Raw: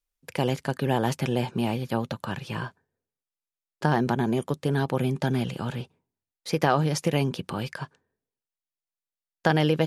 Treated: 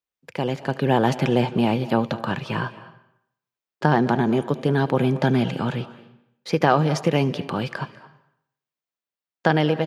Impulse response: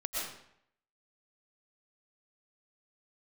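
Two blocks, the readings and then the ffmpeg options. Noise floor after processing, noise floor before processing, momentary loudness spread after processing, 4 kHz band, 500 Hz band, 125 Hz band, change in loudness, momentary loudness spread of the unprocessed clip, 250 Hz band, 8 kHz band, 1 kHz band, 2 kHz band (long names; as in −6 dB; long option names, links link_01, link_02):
below −85 dBFS, below −85 dBFS, 11 LU, +2.5 dB, +5.0 dB, +3.5 dB, +4.5 dB, 12 LU, +5.0 dB, −2.5 dB, +5.0 dB, +4.5 dB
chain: -filter_complex "[0:a]highpass=120,equalizer=frequency=11000:width=0.59:gain=-13,dynaudnorm=framelen=480:gausssize=3:maxgain=7.5dB,asplit=2[link_01][link_02];[link_02]adelay=220,highpass=300,lowpass=3400,asoftclip=type=hard:threshold=-11dB,volume=-20dB[link_03];[link_01][link_03]amix=inputs=2:normalize=0,asplit=2[link_04][link_05];[1:a]atrim=start_sample=2205,adelay=74[link_06];[link_05][link_06]afir=irnorm=-1:irlink=0,volume=-20dB[link_07];[link_04][link_07]amix=inputs=2:normalize=0"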